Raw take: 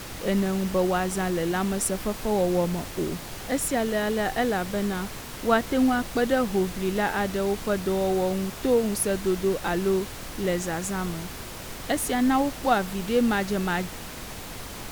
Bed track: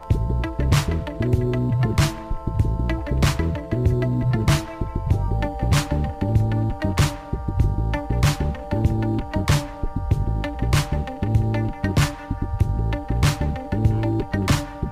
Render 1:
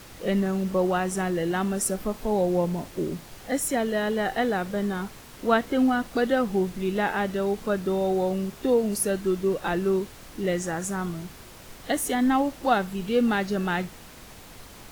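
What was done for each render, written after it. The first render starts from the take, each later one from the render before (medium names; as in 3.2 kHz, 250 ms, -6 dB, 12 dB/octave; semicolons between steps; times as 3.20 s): noise print and reduce 8 dB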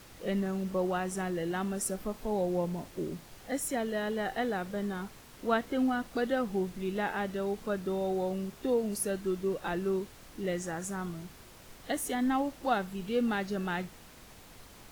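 trim -7 dB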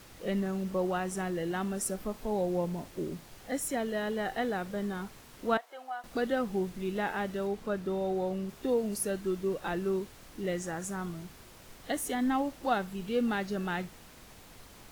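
5.57–6.04 s: ladder high-pass 620 Hz, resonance 50%; 7.47–8.49 s: treble shelf 5 kHz -5.5 dB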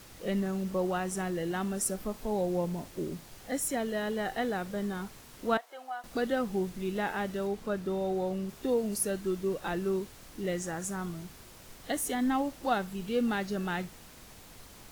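tone controls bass +1 dB, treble +3 dB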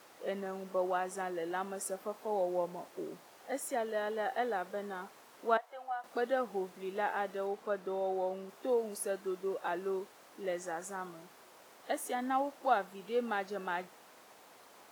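high-pass 760 Hz 12 dB/octave; tilt shelf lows +9.5 dB, about 1.2 kHz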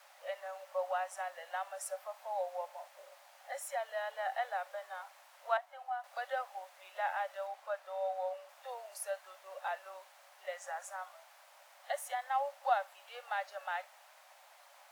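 rippled Chebyshev high-pass 550 Hz, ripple 3 dB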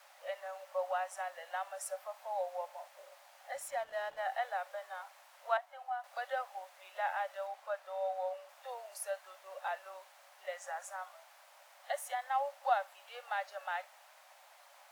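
3.54–4.19 s: hysteresis with a dead band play -51 dBFS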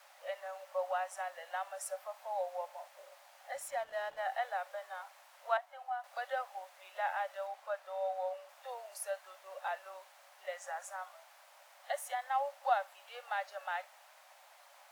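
no audible change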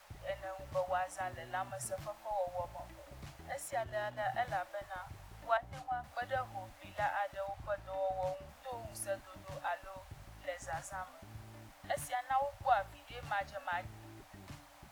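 add bed track -32 dB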